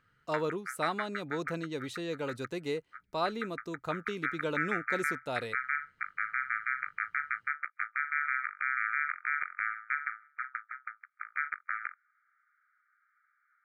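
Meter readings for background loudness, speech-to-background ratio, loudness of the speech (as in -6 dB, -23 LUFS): -35.0 LUFS, -2.0 dB, -37.0 LUFS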